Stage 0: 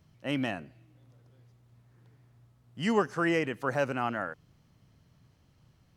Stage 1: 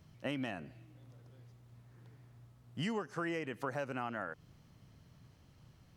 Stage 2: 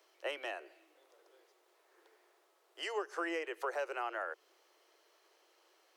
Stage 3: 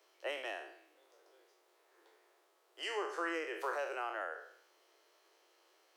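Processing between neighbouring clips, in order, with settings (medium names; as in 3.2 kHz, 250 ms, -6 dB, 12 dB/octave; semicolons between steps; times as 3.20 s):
compression 10:1, threshold -36 dBFS, peak gain reduction 16 dB; trim +2 dB
steep high-pass 340 Hz 96 dB/octave; trim +2 dB
spectral sustain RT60 0.66 s; trim -2.5 dB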